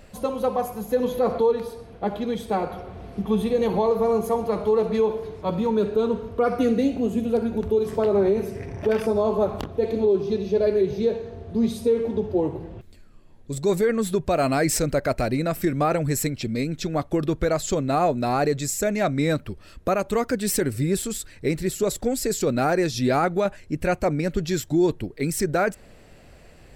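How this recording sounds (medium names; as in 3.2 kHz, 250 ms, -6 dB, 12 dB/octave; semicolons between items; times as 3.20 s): noise floor -48 dBFS; spectral tilt -5.5 dB/octave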